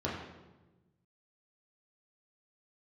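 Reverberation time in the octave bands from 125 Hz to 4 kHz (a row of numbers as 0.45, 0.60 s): 1.8, 1.6, 1.3, 1.0, 0.90, 0.80 s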